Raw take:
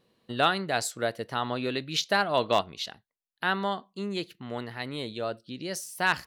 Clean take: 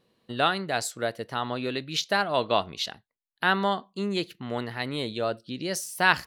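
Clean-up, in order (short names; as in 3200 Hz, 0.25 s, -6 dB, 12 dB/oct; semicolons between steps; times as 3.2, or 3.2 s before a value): clip repair -11 dBFS; gain 0 dB, from 2.61 s +4 dB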